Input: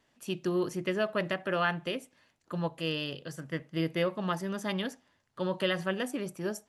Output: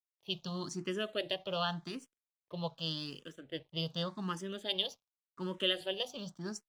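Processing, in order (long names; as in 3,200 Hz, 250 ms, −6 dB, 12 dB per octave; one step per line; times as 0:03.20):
low-pass filter 10,000 Hz 12 dB per octave
high shelf with overshoot 2,700 Hz +7 dB, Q 3
low-pass that shuts in the quiet parts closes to 1,300 Hz, open at −25.5 dBFS
dead-zone distortion −58 dBFS
frequency shifter mixed with the dry sound +0.87 Hz
level −3 dB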